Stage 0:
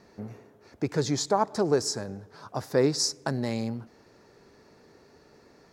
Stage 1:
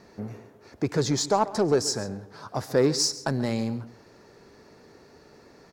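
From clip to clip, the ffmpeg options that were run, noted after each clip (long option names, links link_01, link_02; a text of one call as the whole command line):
ffmpeg -i in.wav -filter_complex "[0:a]asplit=2[link_01][link_02];[link_02]asoftclip=type=tanh:threshold=-27dB,volume=-5.5dB[link_03];[link_01][link_03]amix=inputs=2:normalize=0,aecho=1:1:136:0.141" out.wav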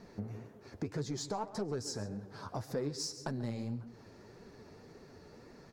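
ffmpeg -i in.wav -af "lowshelf=frequency=230:gain=8.5,flanger=delay=3.8:depth=8.6:regen=36:speed=1.8:shape=triangular,acompressor=threshold=-37dB:ratio=3,volume=-1dB" out.wav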